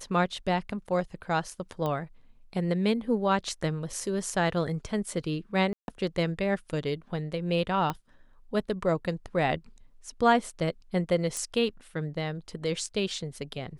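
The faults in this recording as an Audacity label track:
1.860000	1.860000	pop -19 dBFS
5.730000	5.880000	dropout 151 ms
7.900000	7.900000	pop -16 dBFS
11.370000	11.370000	pop -18 dBFS

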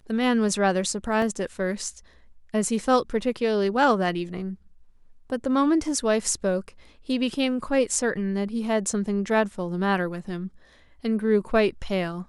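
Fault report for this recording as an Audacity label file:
1.220000	1.220000	dropout 2.9 ms

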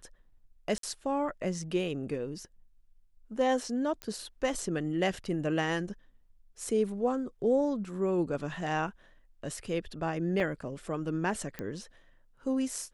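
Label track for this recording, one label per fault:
0.780000	0.830000	dropout 53 ms
4.020000	4.020000	pop -23 dBFS
10.400000	10.400000	dropout 3.7 ms
11.590000	11.590000	pop -22 dBFS

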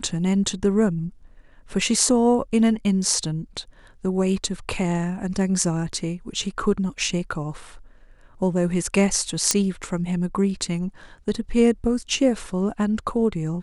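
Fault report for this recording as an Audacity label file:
9.510000	9.510000	pop -2 dBFS

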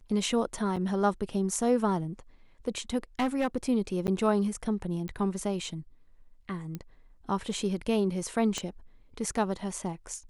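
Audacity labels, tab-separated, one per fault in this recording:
0.760000	0.770000	dropout 6.1 ms
3.190000	3.570000	clipped -22 dBFS
4.070000	4.080000	dropout 9.9 ms
5.080000	5.080000	pop -26 dBFS
6.750000	6.750000	pop -23 dBFS
8.580000	8.580000	pop -18 dBFS

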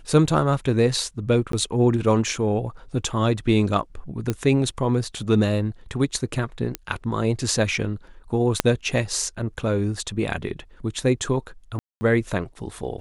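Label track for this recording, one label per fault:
1.520000	1.530000	dropout 13 ms
4.300000	4.300000	pop -10 dBFS
6.750000	6.750000	pop -10 dBFS
8.600000	8.600000	pop -2 dBFS
11.790000	12.010000	dropout 220 ms

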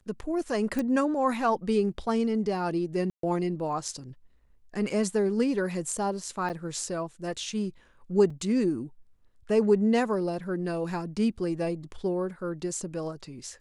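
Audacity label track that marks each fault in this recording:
0.790000	0.790000	pop
3.100000	3.230000	dropout 133 ms
6.490000	6.500000	dropout 8.9 ms
8.300000	8.300000	dropout 4.1 ms

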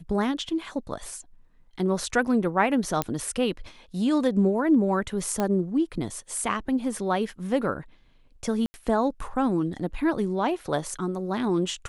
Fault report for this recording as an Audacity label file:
3.020000	3.020000	pop -9 dBFS
5.400000	5.400000	pop -13 dBFS
8.660000	8.740000	dropout 80 ms

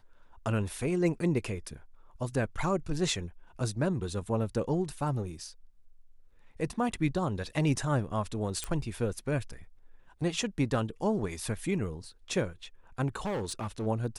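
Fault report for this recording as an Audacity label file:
8.640000	8.640000	pop -18 dBFS
13.200000	13.870000	clipped -29.5 dBFS

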